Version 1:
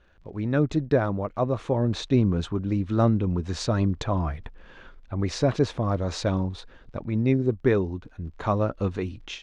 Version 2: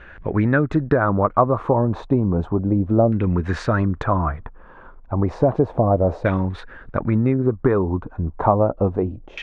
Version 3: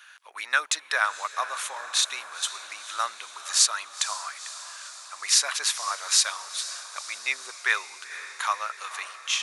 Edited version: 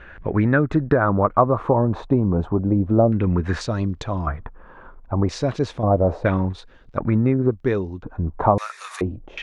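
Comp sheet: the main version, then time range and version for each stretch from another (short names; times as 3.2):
2
3.61–4.27 from 1
5.29–5.83 from 1
6.53–6.97 from 1
7.51–8.03 from 1
8.58–9.01 from 3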